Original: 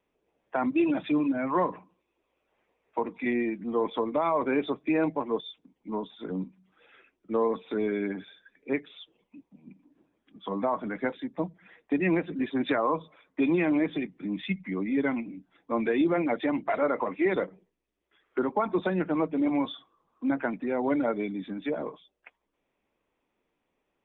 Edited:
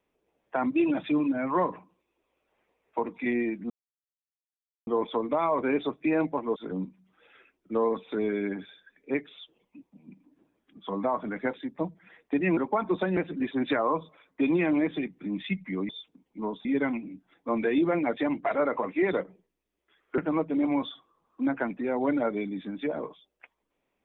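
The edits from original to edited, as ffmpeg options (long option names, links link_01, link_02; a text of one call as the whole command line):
ffmpeg -i in.wav -filter_complex "[0:a]asplit=8[link_01][link_02][link_03][link_04][link_05][link_06][link_07][link_08];[link_01]atrim=end=3.7,asetpts=PTS-STARTPTS,afade=type=out:start_time=3.696:duration=0.004:curve=hsin,apad=pad_dur=1.17[link_09];[link_02]atrim=start=3.7:end=5.392,asetpts=PTS-STARTPTS,afade=type=in:duration=0.004:curve=hsin[link_10];[link_03]atrim=start=6.148:end=12.162[link_11];[link_04]atrim=start=18.408:end=19.012[link_12];[link_05]atrim=start=12.158:end=14.882[link_13];[link_06]atrim=start=5.388:end=6.152[link_14];[link_07]atrim=start=14.878:end=18.412[link_15];[link_08]atrim=start=19.008[link_16];[link_09][link_10]concat=n=2:v=0:a=1[link_17];[link_17][link_11]acrossfade=duration=0.004:curve1=hsin:curve2=hsin[link_18];[link_18][link_12]acrossfade=duration=0.004:curve1=hsin:curve2=hsin[link_19];[link_19][link_13]acrossfade=duration=0.004:curve1=hsin:curve2=hsin[link_20];[link_20][link_14]acrossfade=duration=0.004:curve1=hsin:curve2=hsin[link_21];[link_21][link_15]acrossfade=duration=0.004:curve1=hsin:curve2=hsin[link_22];[link_22][link_16]acrossfade=duration=0.004:curve1=hsin:curve2=hsin" out.wav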